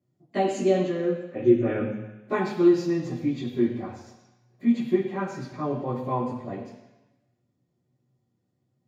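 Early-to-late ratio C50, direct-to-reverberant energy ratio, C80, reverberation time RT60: 5.0 dB, -12.0 dB, 7.0 dB, 1.0 s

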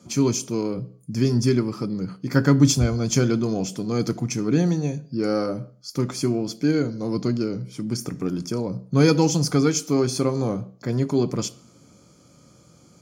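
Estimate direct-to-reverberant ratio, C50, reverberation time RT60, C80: 12.0 dB, 21.0 dB, 0.50 s, 24.0 dB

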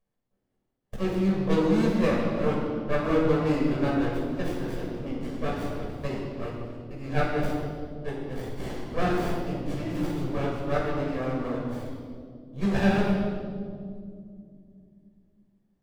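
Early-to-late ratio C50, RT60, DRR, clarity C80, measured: 0.5 dB, 2.3 s, -5.0 dB, 2.0 dB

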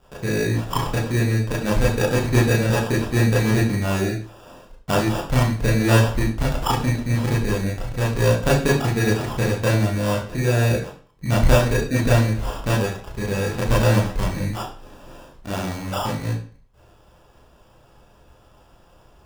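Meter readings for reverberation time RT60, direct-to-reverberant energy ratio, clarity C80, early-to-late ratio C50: 0.45 s, -6.5 dB, 10.5 dB, 5.0 dB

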